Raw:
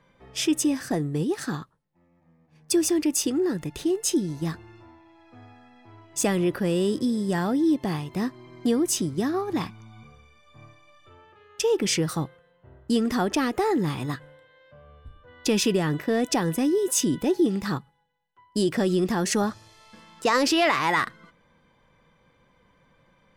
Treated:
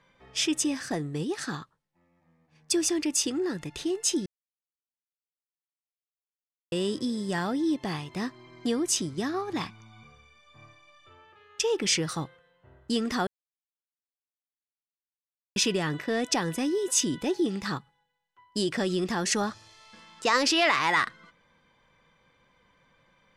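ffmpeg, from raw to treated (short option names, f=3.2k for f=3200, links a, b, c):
-filter_complex "[0:a]asplit=5[a][b][c][d][e];[a]atrim=end=4.26,asetpts=PTS-STARTPTS,afade=t=out:st=4.256:d=0.004:c=hsin[f];[b]atrim=start=4.26:end=6.72,asetpts=PTS-STARTPTS,volume=0[g];[c]atrim=start=6.72:end=13.27,asetpts=PTS-STARTPTS,afade=t=in:d=0.004:c=hsin,afade=t=out:st=6.546:d=0.004:c=hsin[h];[d]atrim=start=13.27:end=15.56,asetpts=PTS-STARTPTS,volume=0[i];[e]atrim=start=15.56,asetpts=PTS-STARTPTS,afade=t=in:d=0.004:c=hsin[j];[f][g][h][i][j]concat=n=5:v=0:a=1,lowpass=8k,tiltshelf=f=970:g=-4,volume=-2dB"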